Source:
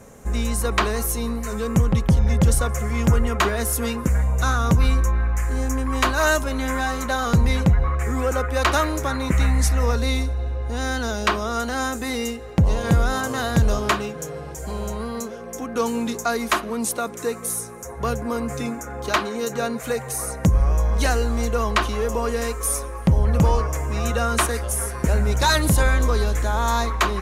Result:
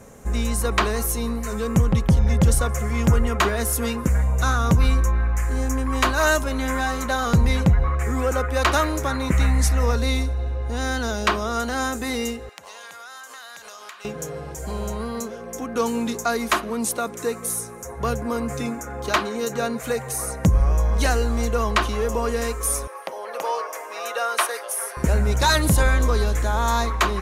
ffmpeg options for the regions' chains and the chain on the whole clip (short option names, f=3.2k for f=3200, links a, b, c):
-filter_complex "[0:a]asettb=1/sr,asplit=3[a][b][c];[a]atrim=end=12.494[d];[b]atrim=start=12.49:end=14.05,asetpts=PTS-STARTPTS,afade=t=in:d=0.004:c=qsin,afade=t=out:st=1.556:d=0.004:c=qsin,highpass=1.2k,acompressor=threshold=-36dB:ratio=10:attack=3.2:release=140:knee=1:detection=peak[e];[c]atrim=start=14.046[f];[d][e]acrossfade=d=0.004:c1=hsin:c2=qsin[g];[g][f]acrossfade=d=0.004:c1=qsin:c2=hsin,asettb=1/sr,asplit=3[h][i][j];[h]atrim=end=22.874[k];[i]atrim=start=22.87:end=24.97,asetpts=PTS-STARTPTS,afade=t=in:d=0.004:c=qsin,afade=t=out:st=2.096:d=0.004:c=qsin,highpass=f=490:w=0.5412,highpass=f=490:w=1.3066,equalizer=f=7.3k:t=o:w=0.34:g=-8.5[l];[j]atrim=start=24.966[m];[k][l]acrossfade=d=0.004:c1=hsin:c2=qsin[n];[n][m]acrossfade=d=0.004:c1=qsin:c2=hsin"